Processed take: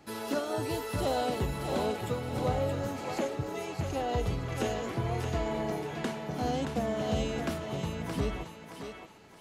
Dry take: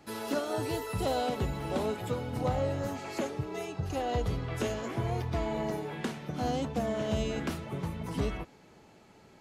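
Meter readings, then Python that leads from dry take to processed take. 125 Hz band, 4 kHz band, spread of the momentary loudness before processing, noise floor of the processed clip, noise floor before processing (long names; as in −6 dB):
0.0 dB, +1.5 dB, 6 LU, −48 dBFS, −58 dBFS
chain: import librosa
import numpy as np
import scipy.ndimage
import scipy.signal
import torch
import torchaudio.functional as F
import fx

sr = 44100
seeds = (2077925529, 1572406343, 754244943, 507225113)

y = fx.echo_thinned(x, sr, ms=623, feedback_pct=35, hz=450.0, wet_db=-5.0)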